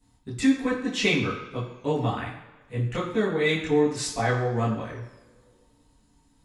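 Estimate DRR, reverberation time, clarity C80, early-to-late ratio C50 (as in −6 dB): −10.0 dB, non-exponential decay, 8.0 dB, 5.5 dB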